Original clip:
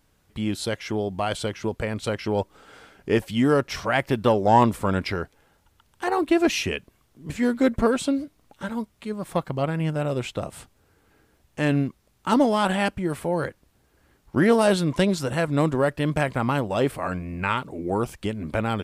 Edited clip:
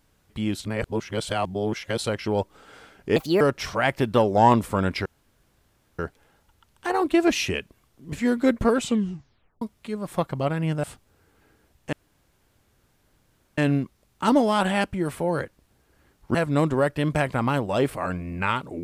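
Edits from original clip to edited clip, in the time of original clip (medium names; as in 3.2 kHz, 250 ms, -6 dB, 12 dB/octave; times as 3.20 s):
0.60–2.04 s: reverse
3.16–3.51 s: speed 142%
5.16 s: insert room tone 0.93 s
7.97 s: tape stop 0.82 s
10.01–10.53 s: delete
11.62 s: insert room tone 1.65 s
14.39–15.36 s: delete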